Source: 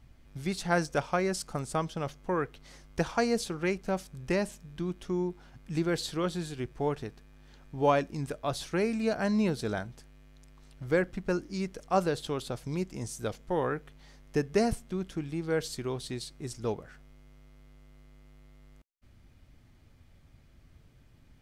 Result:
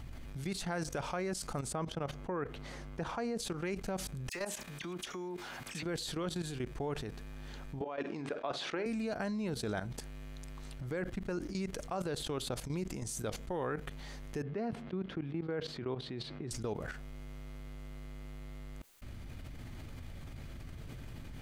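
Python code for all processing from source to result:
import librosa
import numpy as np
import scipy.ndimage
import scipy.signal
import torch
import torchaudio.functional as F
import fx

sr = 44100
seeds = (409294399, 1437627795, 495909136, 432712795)

y = fx.chain(x, sr, fx.highpass(hz=62.0, slope=6),
    fx.high_shelf(hz=3000.0, db=-11.0), at=(1.72, 3.4))
y = fx.chain(y, sr, fx.highpass(hz=940.0, slope=6),
    fx.clip_hard(threshold_db=-28.5),
    fx.dispersion(late='lows', ms=52.0, hz=2500.0), at=(4.29, 5.83))
y = fx.chain(y, sr, fx.bandpass_edges(low_hz=320.0, high_hz=3100.0),
    fx.over_compress(threshold_db=-32.0, ratio=-1.0),
    fx.doubler(ms=49.0, db=-13.5), at=(7.81, 8.86))
y = fx.chain(y, sr, fx.highpass(hz=120.0, slope=12),
    fx.air_absorb(metres=340.0), at=(14.42, 16.51))
y = fx.level_steps(y, sr, step_db=17)
y = fx.peak_eq(y, sr, hz=5400.0, db=-3.5, octaves=0.22)
y = fx.env_flatten(y, sr, amount_pct=70)
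y = F.gain(torch.from_numpy(y), -2.0).numpy()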